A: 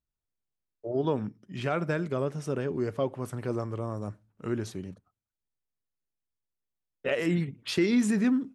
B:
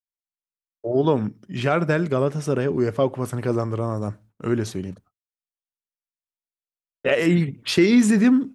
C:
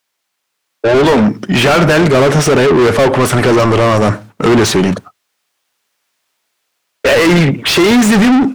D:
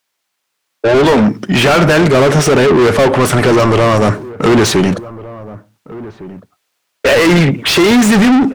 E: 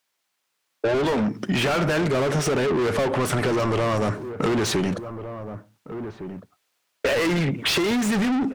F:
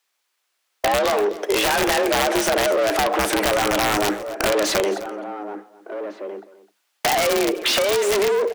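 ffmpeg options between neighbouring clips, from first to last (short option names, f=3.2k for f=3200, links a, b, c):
-af "agate=range=-33dB:threshold=-53dB:ratio=3:detection=peak,volume=8.5dB"
-filter_complex "[0:a]asplit=2[a][b];[b]highpass=f=720:p=1,volume=37dB,asoftclip=type=tanh:threshold=-5.5dB[c];[a][c]amix=inputs=2:normalize=0,lowpass=f=4k:p=1,volume=-6dB,equalizer=f=120:w=0.46:g=3,dynaudnorm=f=470:g=3:m=4.5dB"
-filter_complex "[0:a]asplit=2[a][b];[b]adelay=1458,volume=-18dB,highshelf=f=4k:g=-32.8[c];[a][c]amix=inputs=2:normalize=0"
-af "acompressor=threshold=-16dB:ratio=5,volume=-5dB"
-af "afreqshift=200,aeval=exprs='(mod(5.31*val(0)+1,2)-1)/5.31':c=same,aecho=1:1:257:0.133,volume=2.5dB"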